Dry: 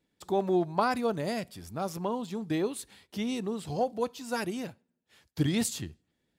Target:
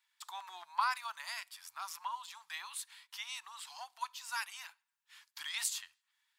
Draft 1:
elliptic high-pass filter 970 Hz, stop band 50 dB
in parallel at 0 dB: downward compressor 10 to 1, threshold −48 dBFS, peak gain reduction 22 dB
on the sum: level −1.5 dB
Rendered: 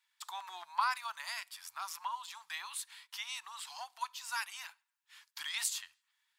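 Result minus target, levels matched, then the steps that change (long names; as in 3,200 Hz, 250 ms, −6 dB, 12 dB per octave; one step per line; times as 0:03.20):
downward compressor: peak gain reduction −9 dB
change: downward compressor 10 to 1, threshold −58 dBFS, peak gain reduction 31 dB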